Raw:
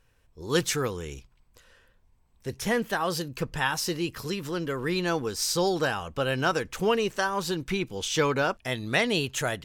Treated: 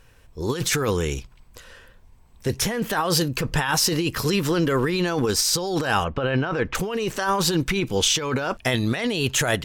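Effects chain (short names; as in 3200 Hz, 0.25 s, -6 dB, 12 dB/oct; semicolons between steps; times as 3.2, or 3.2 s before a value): 6.04–6.75 LPF 2600 Hz 12 dB/oct; negative-ratio compressor -31 dBFS, ratio -1; gain +8.5 dB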